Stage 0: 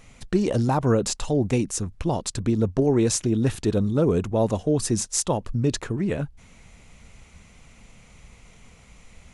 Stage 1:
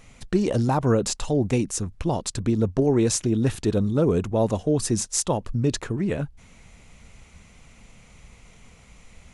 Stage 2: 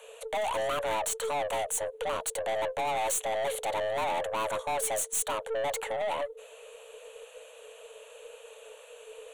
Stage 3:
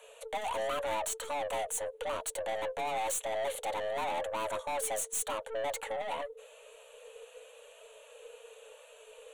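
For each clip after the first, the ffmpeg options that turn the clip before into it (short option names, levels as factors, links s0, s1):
-af anull
-af "afreqshift=430,aeval=exprs='(tanh(25.1*val(0)+0.2)-tanh(0.2))/25.1':c=same,aexciter=amount=1:drive=2.1:freq=2700"
-af "flanger=delay=3:depth=1.3:regen=-42:speed=0.89:shape=triangular"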